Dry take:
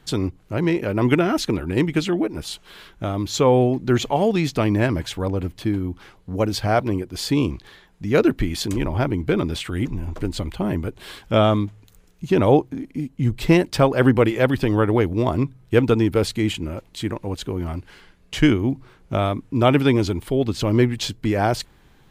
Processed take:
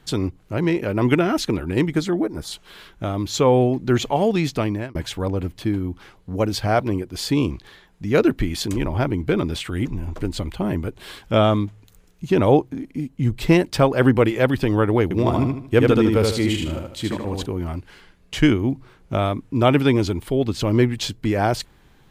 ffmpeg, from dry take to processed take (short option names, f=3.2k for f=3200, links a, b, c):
-filter_complex "[0:a]asettb=1/sr,asplit=3[a][b][c];[a]atrim=end=1.904[d];[b]atrim=start=1.9:end=2.52,asetpts=PTS-STARTPTS,afade=t=in:d=0.004:c=qsin,afade=t=out:st=0.616:d=0.004:c=qsin,equalizer=f=2.7k:t=o:w=0.41:g=-13.5[e];[c]atrim=start=2.516[f];[d][e]acrossfade=d=0.004:c1=hsin:c2=qsin[g];[g][f]acrossfade=d=0.004:c1=qsin:c2=hsin,asettb=1/sr,asplit=3[h][i][j];[h]atrim=end=15.034[k];[i]atrim=start=15.03:end=17.46,asetpts=PTS-STARTPTS,afade=t=in:d=0.004:c=qsin,afade=t=out:st=2.426:d=0.004:c=qsin,aecho=1:1:76|152|228|304|380:0.708|0.262|0.0969|0.0359|0.0133,atrim=end_sample=107163[l];[j]atrim=start=17.456[m];[k][l]acrossfade=d=0.004:c1=hsin:c2=qsin[n];[n][m]acrossfade=d=0.004:c1=qsin:c2=hsin,asplit=2[o][p];[o]atrim=end=4.95,asetpts=PTS-STARTPTS,afade=t=out:st=4.38:d=0.57:c=qsin[q];[p]atrim=start=4.95,asetpts=PTS-STARTPTS,afade=t=in:d=0.004:c=hsin[r];[q][r]concat=n=2:v=0:a=1"